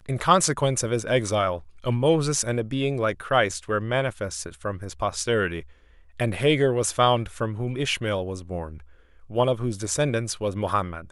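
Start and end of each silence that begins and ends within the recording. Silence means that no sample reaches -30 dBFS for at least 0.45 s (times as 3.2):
5.6–6.2
8.75–9.33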